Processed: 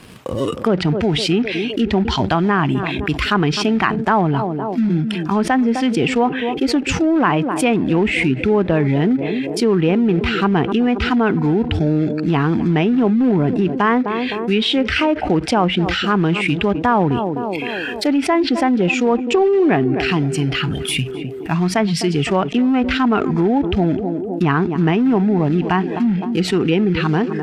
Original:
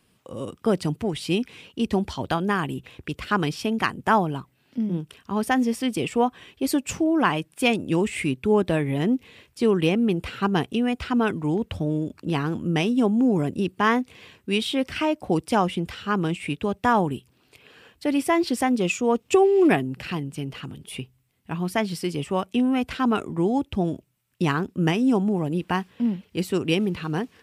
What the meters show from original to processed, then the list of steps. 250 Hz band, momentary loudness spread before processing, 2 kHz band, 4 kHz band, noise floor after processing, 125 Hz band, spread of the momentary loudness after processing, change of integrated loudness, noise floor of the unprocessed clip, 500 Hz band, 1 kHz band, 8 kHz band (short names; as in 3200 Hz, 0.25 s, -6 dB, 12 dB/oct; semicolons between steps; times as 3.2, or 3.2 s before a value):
+7.5 dB, 10 LU, +7.5 dB, +9.0 dB, -25 dBFS, +9.0 dB, 5 LU, +7.0 dB, -65 dBFS, +6.5 dB, +6.0 dB, +5.0 dB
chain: in parallel at -4.5 dB: companded quantiser 4-bit; on the sum: spectral noise reduction 14 dB; high shelf 4800 Hz -7.5 dB; on a send: narrowing echo 0.257 s, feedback 50%, band-pass 410 Hz, level -17 dB; on the sum: treble ducked by the level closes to 2400 Hz, closed at -15 dBFS; fast leveller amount 70%; gain -3 dB